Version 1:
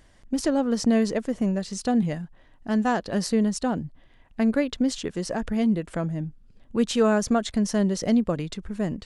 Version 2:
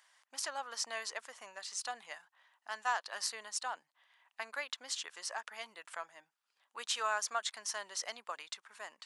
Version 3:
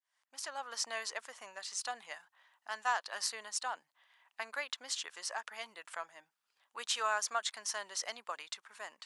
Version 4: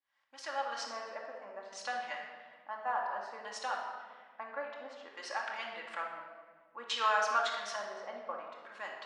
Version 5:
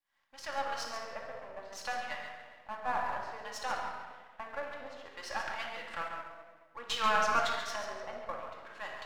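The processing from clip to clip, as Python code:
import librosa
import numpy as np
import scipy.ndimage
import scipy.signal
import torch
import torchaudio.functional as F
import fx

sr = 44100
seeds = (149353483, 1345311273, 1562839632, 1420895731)

y1 = scipy.signal.sosfilt(scipy.signal.cheby1(3, 1.0, 960.0, 'highpass', fs=sr, output='sos'), x)
y1 = F.gain(torch.from_numpy(y1), -3.5).numpy()
y2 = fx.fade_in_head(y1, sr, length_s=0.75)
y2 = F.gain(torch.from_numpy(y2), 1.0).numpy()
y3 = fx.filter_lfo_lowpass(y2, sr, shape='square', hz=0.58, low_hz=980.0, high_hz=3300.0, q=0.71)
y3 = fx.room_shoebox(y3, sr, seeds[0], volume_m3=1800.0, walls='mixed', distance_m=2.3)
y3 = F.gain(torch.from_numpy(y3), 1.5).numpy()
y4 = np.where(y3 < 0.0, 10.0 ** (-7.0 / 20.0) * y3, y3)
y4 = y4 + 10.0 ** (-8.5 / 20.0) * np.pad(y4, (int(138 * sr / 1000.0), 0))[:len(y4)]
y4 = F.gain(torch.from_numpy(y4), 3.0).numpy()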